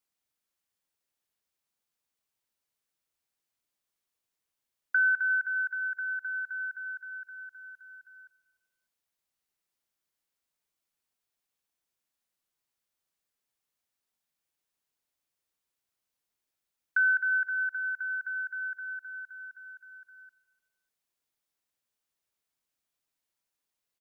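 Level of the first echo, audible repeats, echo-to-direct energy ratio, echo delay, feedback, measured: -19.0 dB, 3, -17.5 dB, 149 ms, 54%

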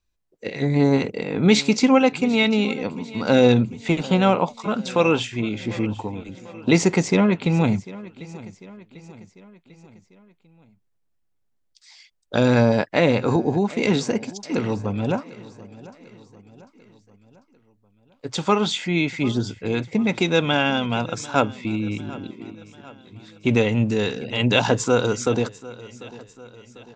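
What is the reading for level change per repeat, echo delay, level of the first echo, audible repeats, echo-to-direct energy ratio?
-5.5 dB, 746 ms, -19.0 dB, 3, -17.5 dB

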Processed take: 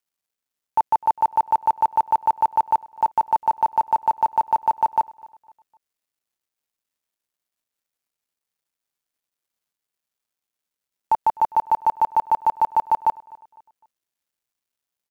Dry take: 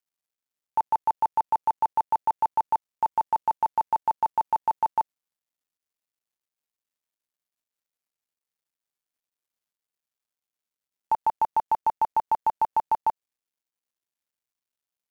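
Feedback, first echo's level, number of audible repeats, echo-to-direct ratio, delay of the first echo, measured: 38%, -23.0 dB, 2, -22.5 dB, 253 ms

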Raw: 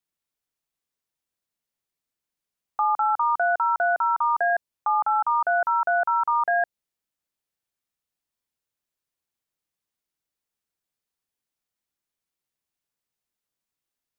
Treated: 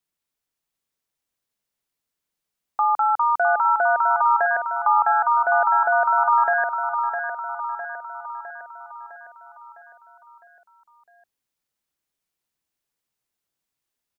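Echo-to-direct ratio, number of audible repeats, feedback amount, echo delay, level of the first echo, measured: -5.5 dB, 6, 56%, 657 ms, -7.0 dB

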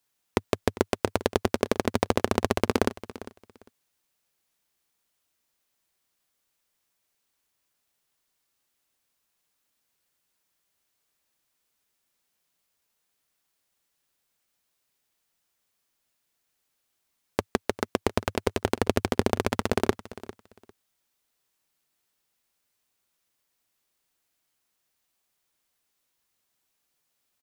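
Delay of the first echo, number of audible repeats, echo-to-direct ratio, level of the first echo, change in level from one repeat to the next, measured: 400 ms, 2, -17.0 dB, -17.0 dB, -14.5 dB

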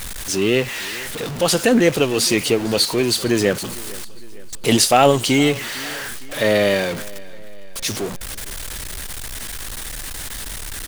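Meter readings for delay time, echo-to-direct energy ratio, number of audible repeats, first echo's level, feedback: 457 ms, -19.5 dB, 3, -21.0 dB, 53%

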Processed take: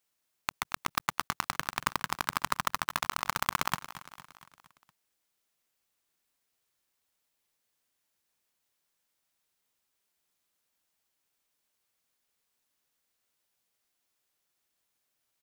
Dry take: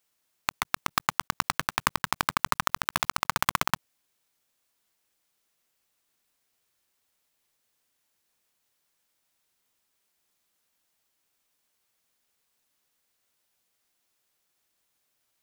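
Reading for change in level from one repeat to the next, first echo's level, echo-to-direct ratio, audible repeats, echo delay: -5.0 dB, -15.0 dB, -13.5 dB, 4, 231 ms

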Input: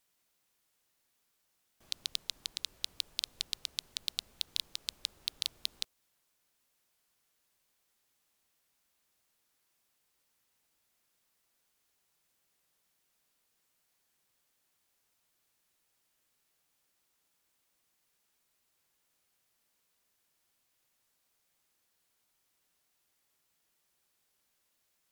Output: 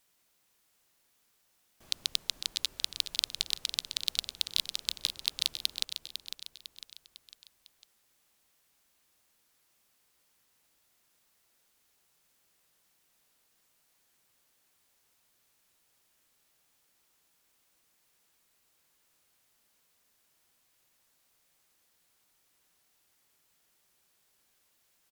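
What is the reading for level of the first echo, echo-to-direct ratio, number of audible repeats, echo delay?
-9.0 dB, -8.0 dB, 4, 502 ms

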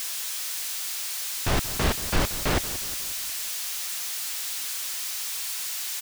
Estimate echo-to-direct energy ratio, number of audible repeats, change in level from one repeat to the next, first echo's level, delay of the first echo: -13.0 dB, 4, -6.0 dB, -14.5 dB, 180 ms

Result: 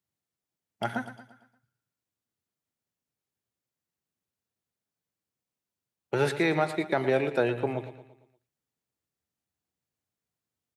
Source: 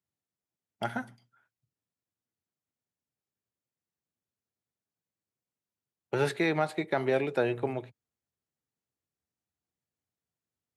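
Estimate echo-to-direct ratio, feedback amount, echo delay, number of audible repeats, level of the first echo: -11.5 dB, 47%, 115 ms, 4, -12.5 dB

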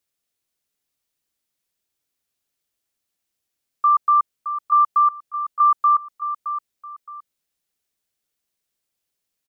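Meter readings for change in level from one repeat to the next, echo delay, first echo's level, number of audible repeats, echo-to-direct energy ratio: -11.0 dB, 618 ms, -10.5 dB, 2, -10.0 dB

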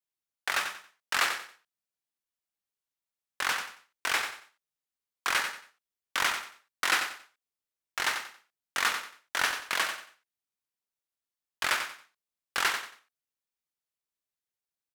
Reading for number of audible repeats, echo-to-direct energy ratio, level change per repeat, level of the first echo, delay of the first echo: 3, -7.5 dB, -11.5 dB, -8.0 dB, 92 ms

